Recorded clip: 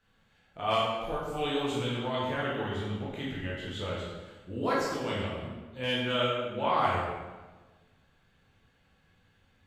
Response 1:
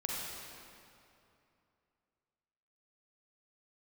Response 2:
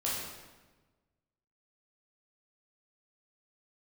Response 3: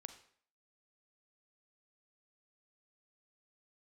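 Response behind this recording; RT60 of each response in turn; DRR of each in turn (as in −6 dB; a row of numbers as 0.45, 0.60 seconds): 2; 2.7, 1.3, 0.55 seconds; −3.5, −6.5, 9.0 decibels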